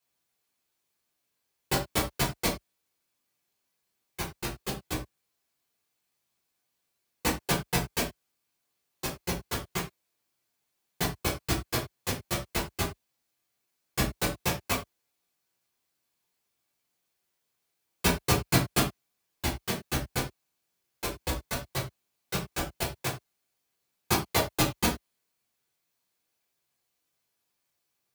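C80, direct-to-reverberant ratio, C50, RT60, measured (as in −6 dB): 15.0 dB, −4.5 dB, 9.0 dB, non-exponential decay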